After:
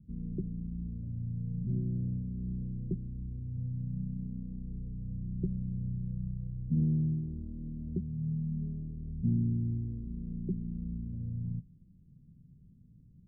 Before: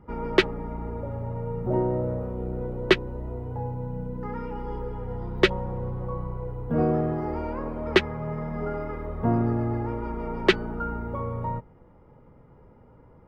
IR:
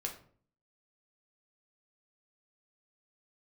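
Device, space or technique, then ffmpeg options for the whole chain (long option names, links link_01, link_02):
the neighbour's flat through the wall: -af "lowpass=frequency=220:width=0.5412,lowpass=frequency=220:width=1.3066,equalizer=frequency=170:width_type=o:width=0.9:gain=8,volume=-6.5dB"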